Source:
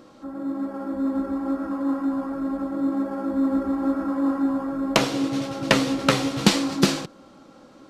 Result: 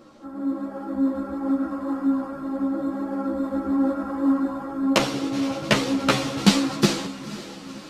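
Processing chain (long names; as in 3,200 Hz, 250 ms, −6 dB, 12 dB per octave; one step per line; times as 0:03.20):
feedback delay with all-pass diffusion 498 ms, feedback 60%, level −15 dB
string-ensemble chorus
level +2.5 dB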